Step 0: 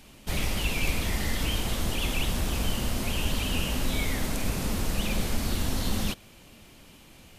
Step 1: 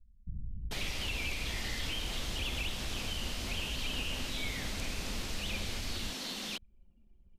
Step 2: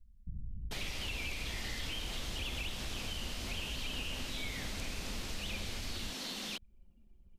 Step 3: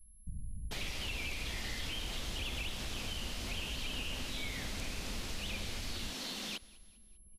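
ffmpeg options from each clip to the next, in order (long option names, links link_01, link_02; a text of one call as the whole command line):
ffmpeg -i in.wav -filter_complex "[0:a]anlmdn=0.398,acrossover=split=2100|6400[link_01][link_02][link_03];[link_01]acompressor=threshold=-36dB:ratio=4[link_04];[link_02]acompressor=threshold=-37dB:ratio=4[link_05];[link_03]acompressor=threshold=-57dB:ratio=4[link_06];[link_04][link_05][link_06]amix=inputs=3:normalize=0,acrossover=split=180[link_07][link_08];[link_08]adelay=440[link_09];[link_07][link_09]amix=inputs=2:normalize=0" out.wav
ffmpeg -i in.wav -af "acompressor=threshold=-43dB:ratio=1.5,volume=1dB" out.wav
ffmpeg -i in.wav -af "aeval=exprs='val(0)+0.000794*sin(2*PI*11000*n/s)':channel_layout=same,aecho=1:1:199|398|597:0.0794|0.0373|0.0175" out.wav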